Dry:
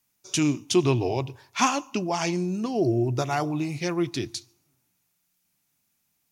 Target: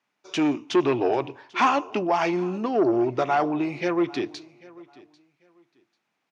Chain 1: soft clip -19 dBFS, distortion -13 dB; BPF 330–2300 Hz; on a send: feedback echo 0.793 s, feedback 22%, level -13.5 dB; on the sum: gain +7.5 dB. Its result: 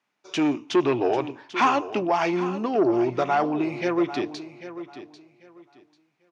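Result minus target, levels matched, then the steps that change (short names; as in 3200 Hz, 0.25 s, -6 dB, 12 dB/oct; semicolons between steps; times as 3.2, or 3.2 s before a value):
echo-to-direct +9 dB
change: feedback echo 0.793 s, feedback 22%, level -22.5 dB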